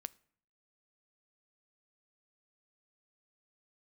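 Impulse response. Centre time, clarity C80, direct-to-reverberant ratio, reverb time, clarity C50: 2 ms, 27.5 dB, 17.5 dB, 0.60 s, 23.5 dB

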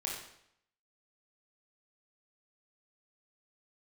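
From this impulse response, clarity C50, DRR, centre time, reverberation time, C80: 2.0 dB, -3.0 dB, 47 ms, 0.70 s, 5.5 dB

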